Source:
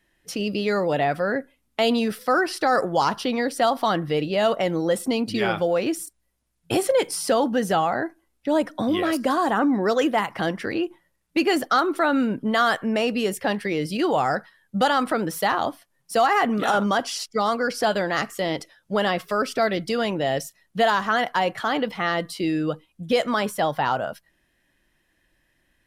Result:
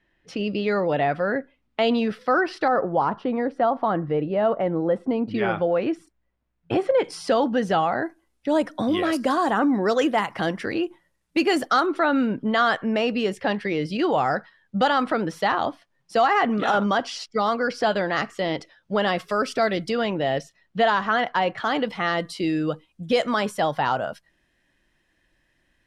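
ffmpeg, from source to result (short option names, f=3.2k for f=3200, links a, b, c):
-af "asetnsamples=n=441:p=0,asendcmd='2.68 lowpass f 1300;5.31 lowpass f 2200;7.04 lowpass f 4600;8.02 lowpass f 9700;11.86 lowpass f 4600;19.08 lowpass f 8500;19.9 lowpass f 4000;21.64 lowpass f 8200',lowpass=3.3k"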